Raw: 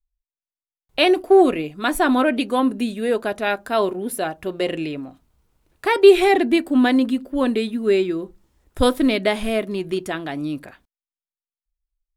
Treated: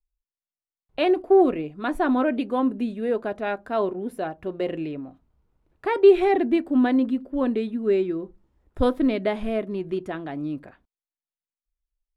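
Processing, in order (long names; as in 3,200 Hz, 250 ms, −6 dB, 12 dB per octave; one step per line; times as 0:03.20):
low-pass filter 1,100 Hz 6 dB per octave
level −3 dB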